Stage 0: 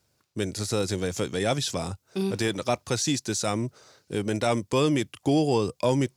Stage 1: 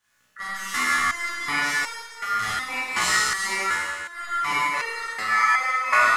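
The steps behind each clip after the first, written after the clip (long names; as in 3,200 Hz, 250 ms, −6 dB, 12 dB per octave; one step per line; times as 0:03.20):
ring modulation 1,600 Hz
four-comb reverb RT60 1.7 s, combs from 28 ms, DRR −8.5 dB
step-sequenced resonator 2.7 Hz 61–460 Hz
level +7 dB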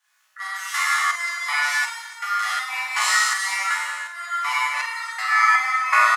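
Butterworth high-pass 690 Hz 48 dB per octave
on a send: multi-tap delay 46/290 ms −9/−19 dB
on the sum: level +1.5 dB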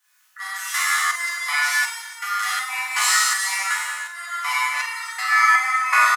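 high-pass filter 590 Hz 6 dB per octave
high-shelf EQ 9,300 Hz +11.5 dB
comb filter 4 ms, depth 32%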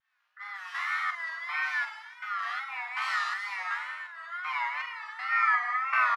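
tape wow and flutter 100 cents
high-frequency loss of the air 340 metres
level −6.5 dB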